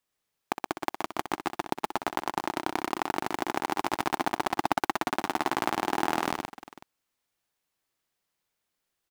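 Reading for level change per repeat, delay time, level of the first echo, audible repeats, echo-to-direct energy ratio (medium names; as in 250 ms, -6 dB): no regular repeats, 62 ms, -10.0 dB, 4, -3.0 dB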